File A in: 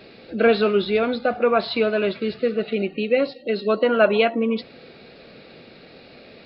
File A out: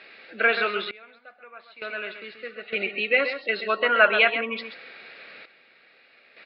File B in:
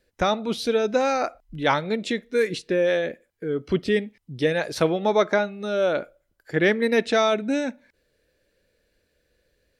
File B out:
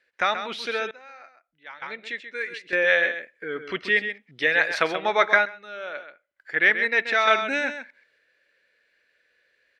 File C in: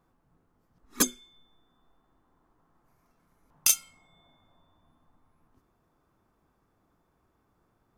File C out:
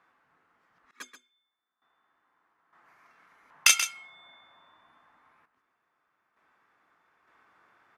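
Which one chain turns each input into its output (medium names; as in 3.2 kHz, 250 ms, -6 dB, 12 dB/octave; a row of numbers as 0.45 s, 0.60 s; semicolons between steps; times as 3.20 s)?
band-pass filter 1.9 kHz, Q 1.8; delay 132 ms -9.5 dB; random-step tremolo 1.1 Hz, depth 95%; normalise loudness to -23 LUFS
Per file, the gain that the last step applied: +10.0 dB, +12.0 dB, +18.5 dB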